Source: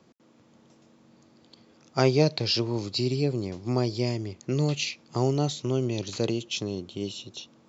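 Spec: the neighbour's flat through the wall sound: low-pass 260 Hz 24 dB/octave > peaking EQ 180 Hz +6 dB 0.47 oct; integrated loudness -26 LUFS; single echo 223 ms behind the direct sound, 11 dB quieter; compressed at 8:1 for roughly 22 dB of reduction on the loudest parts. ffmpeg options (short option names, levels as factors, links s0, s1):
-af "acompressor=threshold=0.0112:ratio=8,lowpass=f=260:w=0.5412,lowpass=f=260:w=1.3066,equalizer=f=180:t=o:w=0.47:g=6,aecho=1:1:223:0.282,volume=10"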